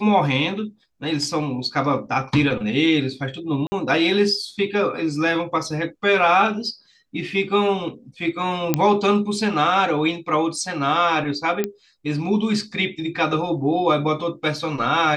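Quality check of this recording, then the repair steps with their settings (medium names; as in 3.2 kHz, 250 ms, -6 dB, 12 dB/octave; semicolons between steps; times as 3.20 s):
3.67–3.72 s: dropout 50 ms
8.74 s: pop -4 dBFS
11.64 s: pop -9 dBFS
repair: de-click; interpolate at 3.67 s, 50 ms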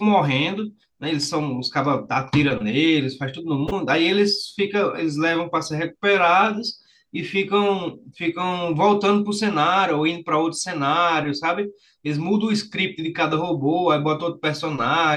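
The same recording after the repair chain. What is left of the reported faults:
nothing left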